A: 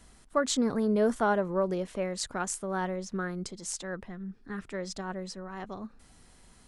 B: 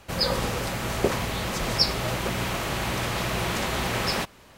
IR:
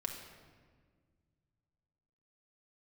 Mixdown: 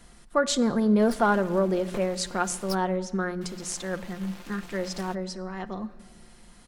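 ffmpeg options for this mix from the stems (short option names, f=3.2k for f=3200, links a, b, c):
-filter_complex "[0:a]equalizer=f=8k:t=o:w=0.77:g=-3,volume=2dB,asplit=2[a][b];[b]volume=-9.5dB[c];[1:a]flanger=delay=0.1:depth=2.8:regen=-41:speed=1.8:shape=sinusoidal,aeval=exprs='0.335*(cos(1*acos(clip(val(0)/0.335,-1,1)))-cos(1*PI/2))+0.0596*(cos(7*acos(clip(val(0)/0.335,-1,1)))-cos(7*PI/2))+0.0531*(cos(8*acos(clip(val(0)/0.335,-1,1)))-cos(8*PI/2))':c=same,adelay=900,volume=-12.5dB,asplit=3[d][e][f];[d]atrim=end=2.75,asetpts=PTS-STARTPTS,afade=t=out:st=2.746:d=0.004:c=hsin[g];[e]atrim=start=2.75:end=3.41,asetpts=PTS-STARTPTS,volume=0[h];[f]atrim=start=3.41,asetpts=PTS-STARTPTS,afade=t=in:d=0.004:c=hsin[i];[g][h][i]concat=n=3:v=0:a=1[j];[2:a]atrim=start_sample=2205[k];[c][k]afir=irnorm=-1:irlink=0[l];[a][j][l]amix=inputs=3:normalize=0,bandreject=f=60:t=h:w=6,bandreject=f=120:t=h:w=6,bandreject=f=180:t=h:w=6,aecho=1:1:5.7:0.41"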